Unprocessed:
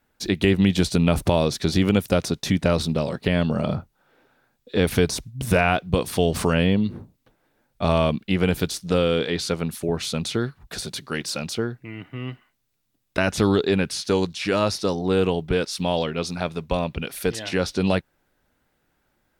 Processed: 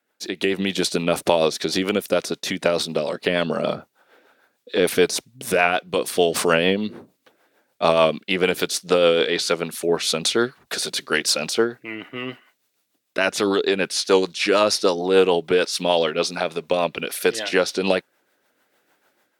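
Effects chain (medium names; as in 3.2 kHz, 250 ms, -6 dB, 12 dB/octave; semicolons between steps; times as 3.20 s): high-pass 390 Hz 12 dB/octave; level rider gain up to 10 dB; rotary cabinet horn 6.7 Hz; trim +1 dB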